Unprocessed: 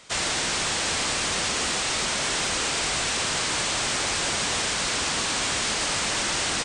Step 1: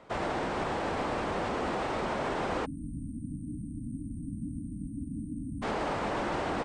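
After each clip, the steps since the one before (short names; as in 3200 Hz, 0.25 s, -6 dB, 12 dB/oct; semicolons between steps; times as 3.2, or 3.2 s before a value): spectral delete 2.65–5.63, 320–8400 Hz; EQ curve 140 Hz 0 dB, 300 Hz +4 dB, 830 Hz +3 dB, 6700 Hz -26 dB; limiter -23.5 dBFS, peak gain reduction 4 dB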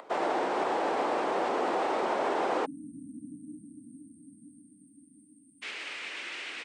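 resonant low shelf 530 Hz +13.5 dB, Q 1.5; upward compressor, threshold -42 dBFS; high-pass sweep 800 Hz -> 2400 Hz, 3.22–5.57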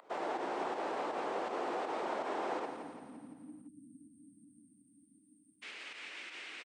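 pump 81 bpm, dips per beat 2, -10 dB, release 86 ms; feedback echo 0.17 s, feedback 54%, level -8 dB; gain -8.5 dB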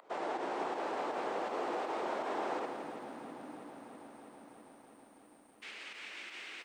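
lo-fi delay 0.326 s, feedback 80%, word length 11-bit, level -13 dB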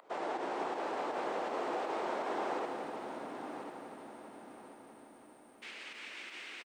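feedback echo 1.042 s, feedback 28%, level -9.5 dB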